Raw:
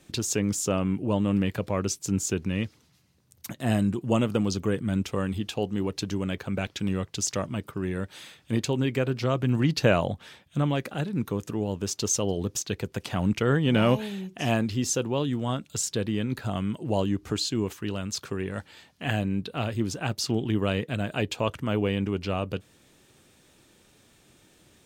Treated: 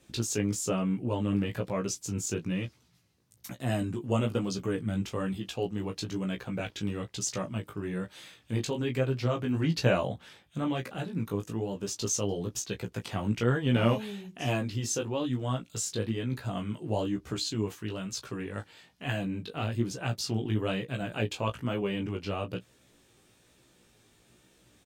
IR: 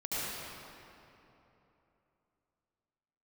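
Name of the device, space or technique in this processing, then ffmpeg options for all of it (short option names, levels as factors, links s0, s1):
double-tracked vocal: -filter_complex "[0:a]asplit=2[s0][s1];[s1]adelay=17,volume=0.355[s2];[s0][s2]amix=inputs=2:normalize=0,flanger=delay=15:depth=4.6:speed=1.1,volume=0.841"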